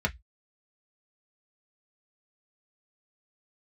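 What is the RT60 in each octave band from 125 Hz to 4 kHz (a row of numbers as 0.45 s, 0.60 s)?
0.25 s, 0.10 s, 0.10 s, 0.10 s, 0.15 s, 0.15 s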